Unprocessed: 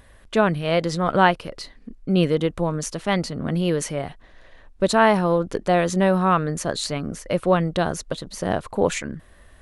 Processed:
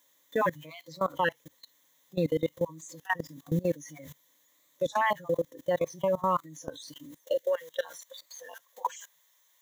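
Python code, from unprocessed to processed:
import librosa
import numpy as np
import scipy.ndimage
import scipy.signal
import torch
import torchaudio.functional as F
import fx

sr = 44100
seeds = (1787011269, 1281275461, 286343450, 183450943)

y = fx.spec_dropout(x, sr, seeds[0], share_pct=37)
y = fx.dmg_noise_colour(y, sr, seeds[1], colour='white', level_db=-35.0)
y = fx.filter_sweep_highpass(y, sr, from_hz=200.0, to_hz=730.0, start_s=6.93, end_s=7.56, q=0.87)
y = fx.noise_reduce_blind(y, sr, reduce_db=16)
y = fx.ripple_eq(y, sr, per_octave=1.1, db=12)
y = fx.rider(y, sr, range_db=4, speed_s=2.0)
y = fx.spec_box(y, sr, start_s=7.32, length_s=0.31, low_hz=640.0, high_hz=1400.0, gain_db=-12)
y = fx.level_steps(y, sr, step_db=21)
y = fx.record_warp(y, sr, rpm=33.33, depth_cents=100.0)
y = y * librosa.db_to_amplitude(-4.0)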